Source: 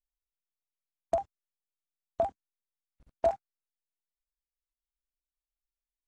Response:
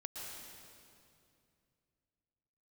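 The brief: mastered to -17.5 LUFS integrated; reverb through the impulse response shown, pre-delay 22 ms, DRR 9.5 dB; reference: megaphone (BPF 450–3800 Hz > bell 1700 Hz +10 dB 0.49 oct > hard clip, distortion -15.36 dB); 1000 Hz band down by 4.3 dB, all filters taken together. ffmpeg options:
-filter_complex "[0:a]equalizer=f=1k:t=o:g=-7.5,asplit=2[a][b];[1:a]atrim=start_sample=2205,adelay=22[c];[b][c]afir=irnorm=-1:irlink=0,volume=-8dB[d];[a][d]amix=inputs=2:normalize=0,highpass=450,lowpass=3.8k,equalizer=f=1.7k:t=o:w=0.49:g=10,asoftclip=type=hard:threshold=-26dB,volume=22.5dB"

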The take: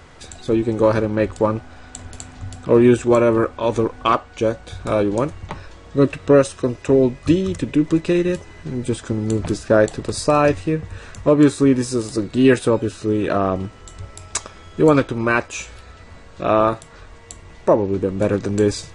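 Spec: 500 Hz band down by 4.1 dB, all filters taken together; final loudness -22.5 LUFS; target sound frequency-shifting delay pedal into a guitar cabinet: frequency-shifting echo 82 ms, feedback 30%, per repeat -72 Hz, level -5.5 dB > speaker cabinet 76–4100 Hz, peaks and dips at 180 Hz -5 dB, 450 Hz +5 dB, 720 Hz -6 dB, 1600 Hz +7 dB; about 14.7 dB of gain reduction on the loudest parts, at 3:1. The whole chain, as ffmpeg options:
-filter_complex "[0:a]equalizer=f=500:t=o:g=-7.5,acompressor=threshold=-32dB:ratio=3,asplit=5[a][b][c][d][e];[b]adelay=82,afreqshift=-72,volume=-5.5dB[f];[c]adelay=164,afreqshift=-144,volume=-16dB[g];[d]adelay=246,afreqshift=-216,volume=-26.4dB[h];[e]adelay=328,afreqshift=-288,volume=-36.9dB[i];[a][f][g][h][i]amix=inputs=5:normalize=0,highpass=76,equalizer=f=180:t=q:w=4:g=-5,equalizer=f=450:t=q:w=4:g=5,equalizer=f=720:t=q:w=4:g=-6,equalizer=f=1.6k:t=q:w=4:g=7,lowpass=f=4.1k:w=0.5412,lowpass=f=4.1k:w=1.3066,volume=10.5dB"

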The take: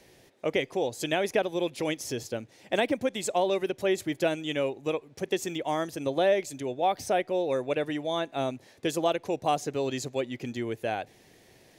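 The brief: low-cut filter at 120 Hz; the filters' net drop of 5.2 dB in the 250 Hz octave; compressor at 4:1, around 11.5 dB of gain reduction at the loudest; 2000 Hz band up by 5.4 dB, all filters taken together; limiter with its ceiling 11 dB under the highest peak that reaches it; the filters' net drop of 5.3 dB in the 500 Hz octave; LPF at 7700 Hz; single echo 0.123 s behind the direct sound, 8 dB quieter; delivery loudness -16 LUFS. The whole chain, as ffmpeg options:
-af "highpass=120,lowpass=7.7k,equalizer=f=250:t=o:g=-4.5,equalizer=f=500:t=o:g=-6,equalizer=f=2k:t=o:g=7,acompressor=threshold=-36dB:ratio=4,alimiter=level_in=6.5dB:limit=-24dB:level=0:latency=1,volume=-6.5dB,aecho=1:1:123:0.398,volume=26dB"

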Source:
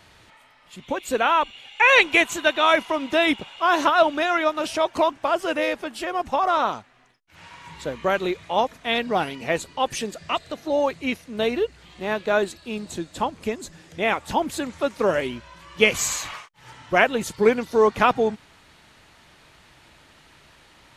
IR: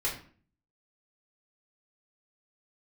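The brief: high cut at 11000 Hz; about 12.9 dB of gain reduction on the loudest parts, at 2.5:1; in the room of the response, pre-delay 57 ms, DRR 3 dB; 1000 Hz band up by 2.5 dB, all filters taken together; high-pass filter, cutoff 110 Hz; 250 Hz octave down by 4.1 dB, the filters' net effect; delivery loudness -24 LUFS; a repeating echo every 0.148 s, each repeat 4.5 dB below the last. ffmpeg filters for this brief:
-filter_complex "[0:a]highpass=110,lowpass=11k,equalizer=f=250:t=o:g=-5.5,equalizer=f=1k:t=o:g=3.5,acompressor=threshold=-31dB:ratio=2.5,aecho=1:1:148|296|444|592|740|888|1036|1184|1332:0.596|0.357|0.214|0.129|0.0772|0.0463|0.0278|0.0167|0.01,asplit=2[a][b];[1:a]atrim=start_sample=2205,adelay=57[c];[b][c]afir=irnorm=-1:irlink=0,volume=-9.5dB[d];[a][d]amix=inputs=2:normalize=0,volume=4.5dB"

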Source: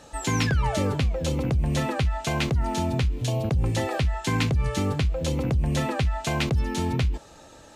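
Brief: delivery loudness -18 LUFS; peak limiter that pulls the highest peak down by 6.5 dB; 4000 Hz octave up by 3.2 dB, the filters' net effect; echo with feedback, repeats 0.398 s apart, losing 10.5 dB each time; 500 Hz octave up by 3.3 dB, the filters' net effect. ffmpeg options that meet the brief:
-af "equalizer=f=500:t=o:g=4,equalizer=f=4k:t=o:g=4,alimiter=limit=-18dB:level=0:latency=1,aecho=1:1:398|796|1194:0.299|0.0896|0.0269,volume=8.5dB"

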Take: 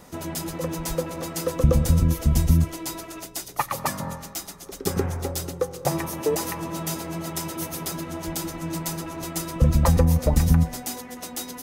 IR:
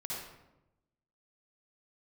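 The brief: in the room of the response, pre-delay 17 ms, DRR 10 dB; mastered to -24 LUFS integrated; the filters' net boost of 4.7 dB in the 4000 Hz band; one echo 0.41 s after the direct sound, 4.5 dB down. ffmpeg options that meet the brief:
-filter_complex "[0:a]equalizer=f=4k:t=o:g=6,aecho=1:1:410:0.596,asplit=2[a][b];[1:a]atrim=start_sample=2205,adelay=17[c];[b][c]afir=irnorm=-1:irlink=0,volume=-11.5dB[d];[a][d]amix=inputs=2:normalize=0,volume=-0.5dB"

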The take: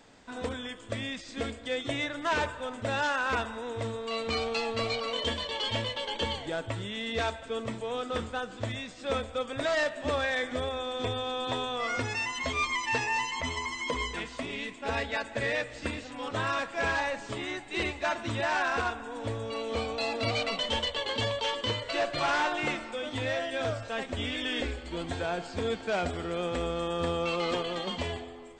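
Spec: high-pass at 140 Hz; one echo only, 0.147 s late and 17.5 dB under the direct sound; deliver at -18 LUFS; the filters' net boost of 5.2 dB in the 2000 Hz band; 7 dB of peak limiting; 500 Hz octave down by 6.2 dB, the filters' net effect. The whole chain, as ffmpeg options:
-af "highpass=140,equalizer=f=500:t=o:g=-8,equalizer=f=2k:t=o:g=7,alimiter=limit=-22.5dB:level=0:latency=1,aecho=1:1:147:0.133,volume=14dB"

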